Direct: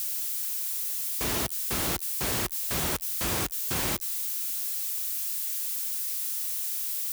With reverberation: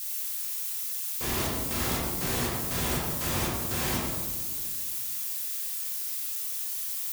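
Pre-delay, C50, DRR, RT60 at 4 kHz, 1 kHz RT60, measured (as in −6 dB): 4 ms, 0.0 dB, −5.5 dB, 0.80 s, 1.5 s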